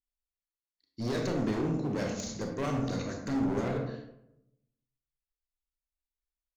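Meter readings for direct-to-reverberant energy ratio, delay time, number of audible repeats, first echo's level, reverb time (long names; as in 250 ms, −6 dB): 2.5 dB, no echo audible, no echo audible, no echo audible, 0.80 s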